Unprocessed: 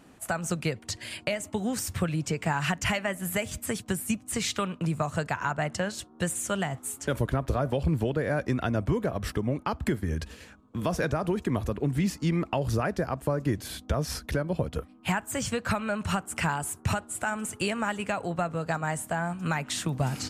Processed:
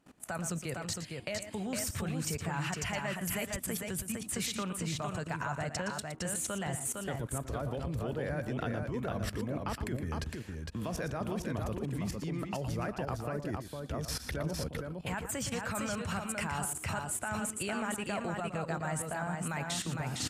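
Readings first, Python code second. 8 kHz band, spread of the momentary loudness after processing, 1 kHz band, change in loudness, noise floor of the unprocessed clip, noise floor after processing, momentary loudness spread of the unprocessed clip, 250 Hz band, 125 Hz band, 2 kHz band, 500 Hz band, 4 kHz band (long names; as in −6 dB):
−2.0 dB, 3 LU, −6.5 dB, −6.0 dB, −53 dBFS, −46 dBFS, 5 LU, −7.0 dB, −7.0 dB, −6.5 dB, −7.0 dB, −4.5 dB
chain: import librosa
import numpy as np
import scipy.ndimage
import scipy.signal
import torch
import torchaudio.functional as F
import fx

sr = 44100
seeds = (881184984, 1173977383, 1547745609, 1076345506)

y = fx.level_steps(x, sr, step_db=18)
y = fx.echo_multitap(y, sr, ms=(116, 458), db=(-10.5, -4.0))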